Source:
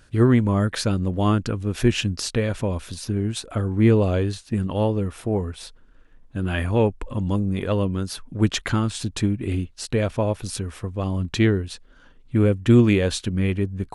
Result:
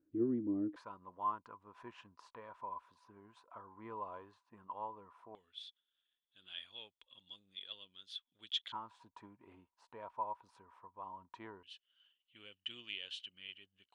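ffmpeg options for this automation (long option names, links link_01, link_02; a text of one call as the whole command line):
ffmpeg -i in.wav -af "asetnsamples=nb_out_samples=441:pad=0,asendcmd='0.76 bandpass f 1000;5.35 bandpass f 3400;8.72 bandpass f 960;11.63 bandpass f 3000',bandpass=frequency=310:width_type=q:width=17:csg=0" out.wav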